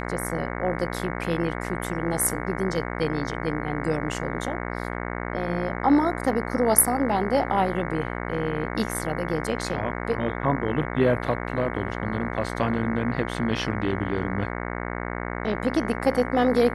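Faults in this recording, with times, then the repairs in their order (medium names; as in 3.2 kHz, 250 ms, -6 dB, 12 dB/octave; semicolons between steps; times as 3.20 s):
buzz 60 Hz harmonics 37 -31 dBFS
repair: de-hum 60 Hz, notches 37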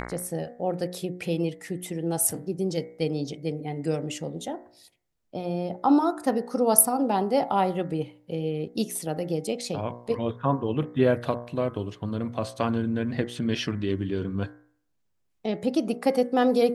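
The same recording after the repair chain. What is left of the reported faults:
nothing left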